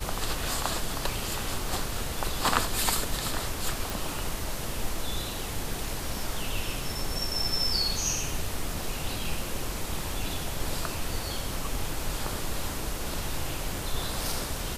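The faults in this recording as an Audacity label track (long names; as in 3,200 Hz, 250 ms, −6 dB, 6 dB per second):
3.900000	3.900000	click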